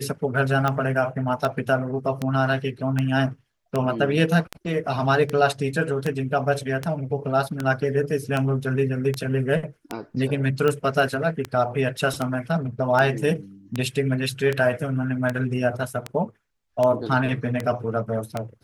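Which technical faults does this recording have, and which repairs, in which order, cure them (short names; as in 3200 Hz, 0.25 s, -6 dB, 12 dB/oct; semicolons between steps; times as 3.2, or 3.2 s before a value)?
tick 78 rpm -11 dBFS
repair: de-click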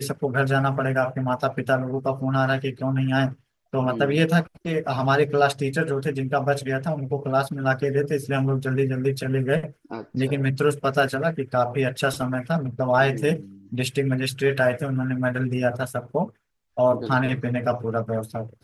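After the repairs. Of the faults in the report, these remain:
none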